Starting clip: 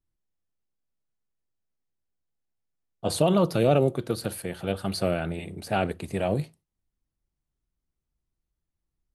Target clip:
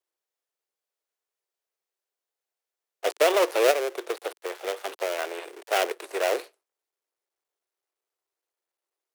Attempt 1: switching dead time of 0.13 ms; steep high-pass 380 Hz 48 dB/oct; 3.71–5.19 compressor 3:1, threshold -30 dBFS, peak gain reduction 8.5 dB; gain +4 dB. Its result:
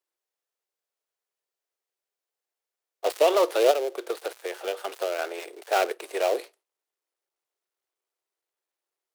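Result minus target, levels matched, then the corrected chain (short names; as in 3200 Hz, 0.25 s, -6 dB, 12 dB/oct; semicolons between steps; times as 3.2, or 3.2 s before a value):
switching dead time: distortion -6 dB
switching dead time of 0.29 ms; steep high-pass 380 Hz 48 dB/oct; 3.71–5.19 compressor 3:1, threshold -30 dBFS, peak gain reduction 8 dB; gain +4 dB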